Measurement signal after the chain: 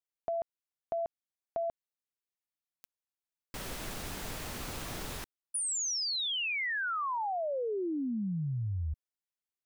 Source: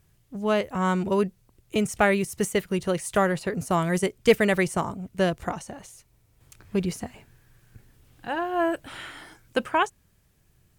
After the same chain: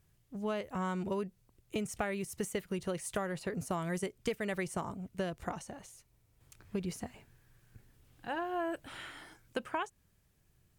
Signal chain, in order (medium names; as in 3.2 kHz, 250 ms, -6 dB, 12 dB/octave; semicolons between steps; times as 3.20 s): compression 10:1, threshold -24 dBFS; trim -7 dB